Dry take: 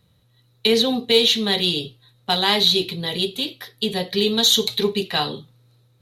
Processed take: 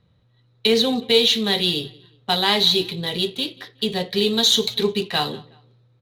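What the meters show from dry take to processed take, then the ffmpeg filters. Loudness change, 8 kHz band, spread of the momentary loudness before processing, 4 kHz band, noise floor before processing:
-0.5 dB, -1.5 dB, 12 LU, -0.5 dB, -60 dBFS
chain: -af "aecho=1:1:184|368:0.075|0.0255,adynamicsmooth=sensitivity=7.5:basefreq=3.8k"

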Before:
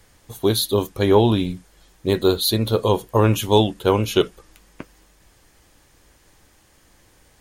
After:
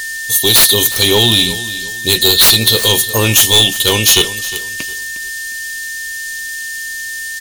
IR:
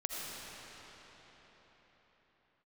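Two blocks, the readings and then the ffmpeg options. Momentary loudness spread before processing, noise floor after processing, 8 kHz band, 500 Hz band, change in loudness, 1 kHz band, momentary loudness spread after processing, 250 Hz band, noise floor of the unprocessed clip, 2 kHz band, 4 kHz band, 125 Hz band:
8 LU, -24 dBFS, +21.0 dB, 0.0 dB, +10.0 dB, +1.0 dB, 15 LU, 0.0 dB, -56 dBFS, +20.0 dB, +17.5 dB, +2.0 dB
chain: -filter_complex "[0:a]aexciter=amount=7.9:drive=9.8:freq=2.6k,acontrast=87,aeval=exprs='val(0)+0.126*sin(2*PI*1800*n/s)':c=same,asplit=2[a][b];[b]aecho=0:1:358|716|1074:0.178|0.0533|0.016[c];[a][c]amix=inputs=2:normalize=0,volume=-3.5dB"

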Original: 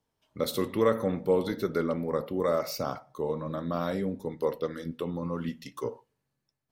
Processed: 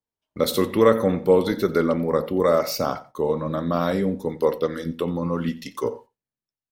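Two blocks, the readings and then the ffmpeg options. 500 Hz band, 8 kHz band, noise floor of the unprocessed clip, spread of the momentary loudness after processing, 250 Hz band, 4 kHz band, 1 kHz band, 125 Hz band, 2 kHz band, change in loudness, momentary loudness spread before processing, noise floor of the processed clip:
+8.0 dB, +8.0 dB, -82 dBFS, 10 LU, +8.0 dB, +8.0 dB, +8.0 dB, +7.0 dB, +8.0 dB, +8.0 dB, 10 LU, under -85 dBFS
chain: -filter_complex "[0:a]agate=range=-21dB:threshold=-50dB:ratio=16:detection=peak,equalizer=f=130:t=o:w=0.27:g=-6.5,asplit=2[a][b];[b]aecho=0:1:89:0.106[c];[a][c]amix=inputs=2:normalize=0,volume=8dB"

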